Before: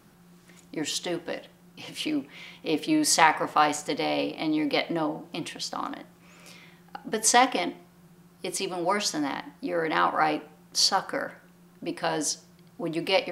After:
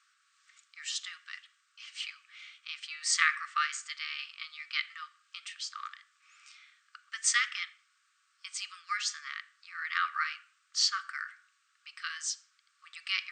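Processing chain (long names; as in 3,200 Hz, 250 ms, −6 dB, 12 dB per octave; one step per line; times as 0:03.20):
dynamic equaliser 1,900 Hz, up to +4 dB, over −40 dBFS, Q 2.4
linear-phase brick-wall band-pass 1,100–8,800 Hz
level −5 dB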